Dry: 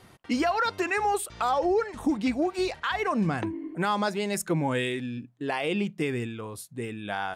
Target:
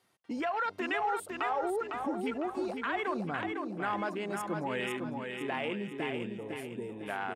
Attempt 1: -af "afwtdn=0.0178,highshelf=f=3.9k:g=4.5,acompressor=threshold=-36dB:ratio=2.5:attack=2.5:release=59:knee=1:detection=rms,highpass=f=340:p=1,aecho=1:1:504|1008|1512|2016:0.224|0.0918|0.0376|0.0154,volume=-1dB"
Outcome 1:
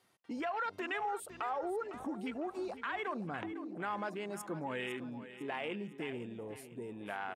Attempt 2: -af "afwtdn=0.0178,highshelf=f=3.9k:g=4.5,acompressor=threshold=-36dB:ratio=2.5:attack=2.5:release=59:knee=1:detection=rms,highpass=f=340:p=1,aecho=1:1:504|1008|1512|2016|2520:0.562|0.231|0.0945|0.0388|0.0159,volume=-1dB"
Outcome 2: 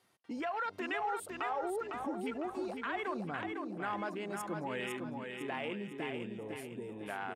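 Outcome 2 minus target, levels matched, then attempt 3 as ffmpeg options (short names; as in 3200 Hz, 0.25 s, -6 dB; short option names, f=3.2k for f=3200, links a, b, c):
compressor: peak gain reduction +4 dB
-af "afwtdn=0.0178,highshelf=f=3.9k:g=4.5,acompressor=threshold=-29dB:ratio=2.5:attack=2.5:release=59:knee=1:detection=rms,highpass=f=340:p=1,aecho=1:1:504|1008|1512|2016|2520:0.562|0.231|0.0945|0.0388|0.0159,volume=-1dB"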